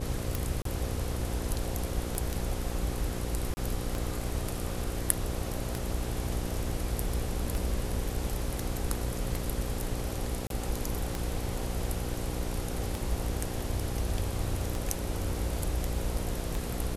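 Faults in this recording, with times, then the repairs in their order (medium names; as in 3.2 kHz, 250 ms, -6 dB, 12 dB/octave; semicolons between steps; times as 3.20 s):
buzz 60 Hz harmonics 9 -37 dBFS
tick 33 1/3 rpm
0.62–0.65 s: dropout 33 ms
3.54–3.57 s: dropout 30 ms
10.47–10.50 s: dropout 32 ms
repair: de-click; de-hum 60 Hz, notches 9; interpolate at 0.62 s, 33 ms; interpolate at 3.54 s, 30 ms; interpolate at 10.47 s, 32 ms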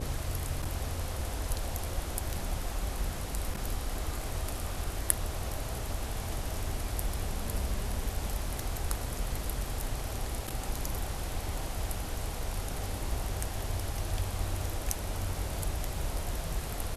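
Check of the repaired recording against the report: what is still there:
nothing left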